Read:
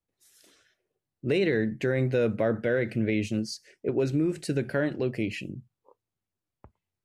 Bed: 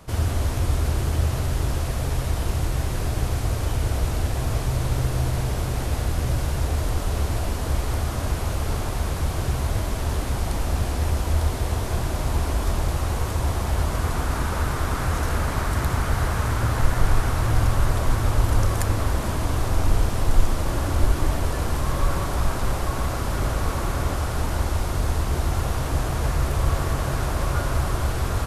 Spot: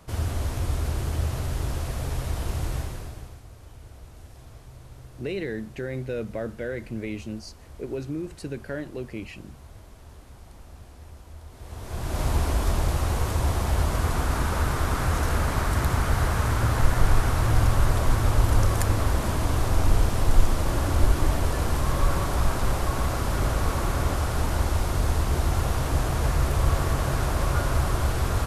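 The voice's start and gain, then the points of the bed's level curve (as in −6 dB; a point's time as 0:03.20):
3.95 s, −6.0 dB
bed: 0:02.76 −4.5 dB
0:03.44 −22 dB
0:11.47 −22 dB
0:12.21 −0.5 dB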